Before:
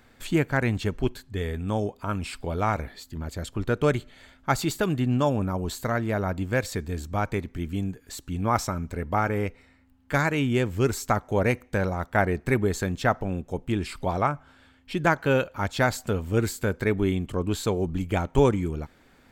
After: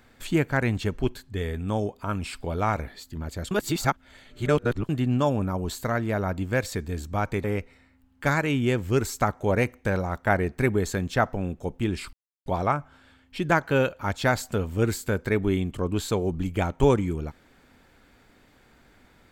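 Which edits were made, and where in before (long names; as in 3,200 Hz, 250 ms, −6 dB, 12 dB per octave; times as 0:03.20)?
0:03.51–0:04.89: reverse
0:07.44–0:09.32: remove
0:14.01: splice in silence 0.33 s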